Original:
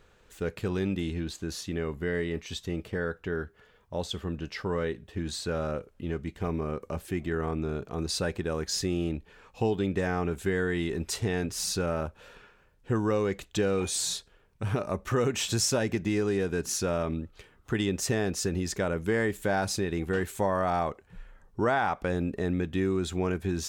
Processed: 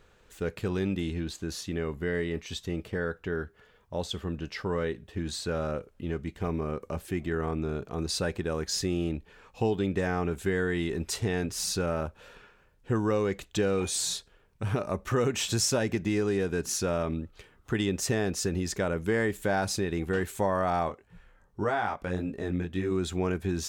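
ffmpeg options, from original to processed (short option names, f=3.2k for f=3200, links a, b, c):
-filter_complex "[0:a]asplit=3[a][b][c];[a]afade=t=out:st=20.88:d=0.02[d];[b]flanger=delay=17.5:depth=6:speed=1.7,afade=t=in:st=20.88:d=0.02,afade=t=out:st=22.9:d=0.02[e];[c]afade=t=in:st=22.9:d=0.02[f];[d][e][f]amix=inputs=3:normalize=0"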